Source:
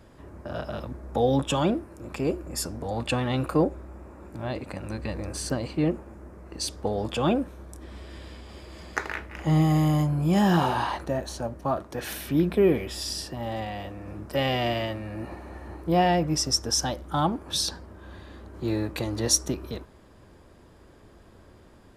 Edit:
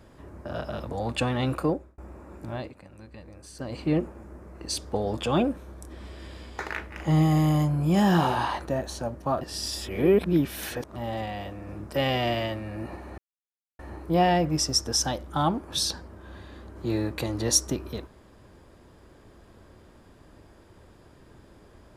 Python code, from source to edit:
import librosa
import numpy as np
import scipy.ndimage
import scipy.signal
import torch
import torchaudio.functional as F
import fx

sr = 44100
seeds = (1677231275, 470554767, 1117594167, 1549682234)

y = fx.edit(x, sr, fx.cut(start_s=0.9, length_s=1.91),
    fx.fade_out_span(start_s=3.46, length_s=0.43),
    fx.fade_down_up(start_s=4.4, length_s=1.34, db=-13.5, fade_s=0.27),
    fx.cut(start_s=8.5, length_s=0.48),
    fx.reverse_span(start_s=11.8, length_s=1.55),
    fx.insert_silence(at_s=15.57, length_s=0.61), tone=tone)